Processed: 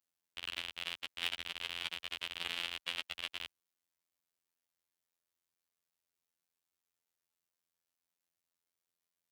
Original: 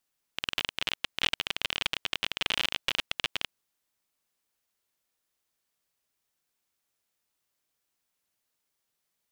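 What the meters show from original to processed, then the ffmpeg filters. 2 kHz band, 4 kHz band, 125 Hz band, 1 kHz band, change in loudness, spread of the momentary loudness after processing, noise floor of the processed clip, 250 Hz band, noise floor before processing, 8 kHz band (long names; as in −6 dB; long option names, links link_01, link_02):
−9.0 dB, −9.0 dB, −13.0 dB, −10.5 dB, −9.0 dB, 6 LU, below −85 dBFS, −12.5 dB, −82 dBFS, −9.5 dB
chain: -af "afftfilt=real='hypot(re,im)*cos(PI*b)':imag='0':win_size=2048:overlap=0.75,aeval=exprs='0.398*(cos(1*acos(clip(val(0)/0.398,-1,1)))-cos(1*PI/2))+0.0316*(cos(4*acos(clip(val(0)/0.398,-1,1)))-cos(4*PI/2))+0.0126*(cos(7*acos(clip(val(0)/0.398,-1,1)))-cos(7*PI/2))':channel_layout=same,highpass=49,volume=-4dB"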